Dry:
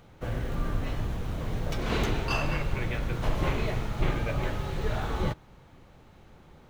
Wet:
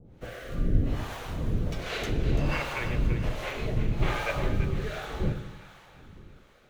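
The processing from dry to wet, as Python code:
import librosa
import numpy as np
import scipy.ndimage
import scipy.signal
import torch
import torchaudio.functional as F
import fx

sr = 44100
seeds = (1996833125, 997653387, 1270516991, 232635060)

y = fx.harmonic_tremolo(x, sr, hz=1.3, depth_pct=100, crossover_hz=520.0)
y = fx.rotary(y, sr, hz=0.65)
y = fx.echo_split(y, sr, split_hz=920.0, low_ms=96, high_ms=337, feedback_pct=52, wet_db=-10.0)
y = y * librosa.db_to_amplitude(7.0)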